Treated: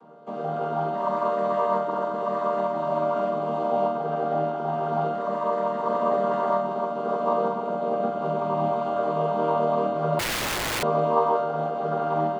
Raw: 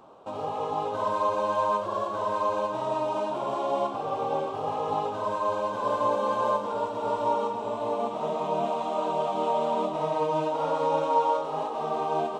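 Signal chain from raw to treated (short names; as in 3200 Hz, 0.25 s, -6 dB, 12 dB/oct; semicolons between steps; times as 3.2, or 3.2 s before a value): chord vocoder major triad, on D#3; flutter echo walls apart 7.6 m, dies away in 0.55 s; 10.19–10.83 wrapped overs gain 24.5 dB; gain +2 dB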